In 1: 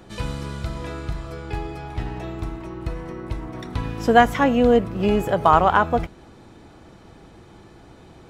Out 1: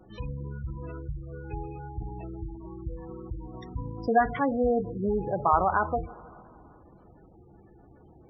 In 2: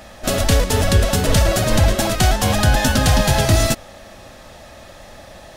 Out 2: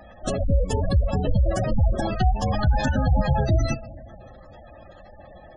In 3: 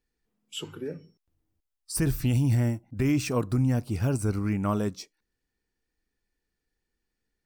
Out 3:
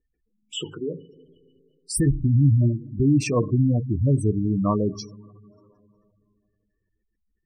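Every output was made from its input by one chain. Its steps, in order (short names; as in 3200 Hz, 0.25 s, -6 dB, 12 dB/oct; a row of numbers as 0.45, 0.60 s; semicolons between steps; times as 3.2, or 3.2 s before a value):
two-slope reverb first 0.32 s, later 2.7 s, from -16 dB, DRR 8.5 dB; spectral gate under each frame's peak -15 dB strong; normalise peaks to -9 dBFS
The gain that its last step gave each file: -8.0, -5.0, +5.5 dB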